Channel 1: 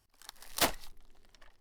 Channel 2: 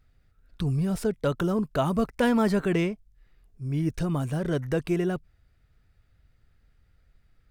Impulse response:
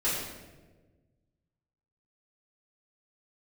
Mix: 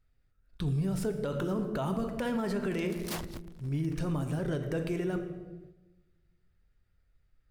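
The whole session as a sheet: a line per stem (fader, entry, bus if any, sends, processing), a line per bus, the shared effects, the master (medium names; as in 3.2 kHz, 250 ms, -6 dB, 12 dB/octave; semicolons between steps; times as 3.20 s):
+0.5 dB, 2.50 s, no send, cycle switcher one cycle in 2, inverted; saturation -35 dBFS, distortion -4 dB
-5.0 dB, 0.00 s, send -14.5 dB, none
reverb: on, RT60 1.3 s, pre-delay 3 ms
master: gate -52 dBFS, range -6 dB; peak limiter -23.5 dBFS, peak gain reduction 9 dB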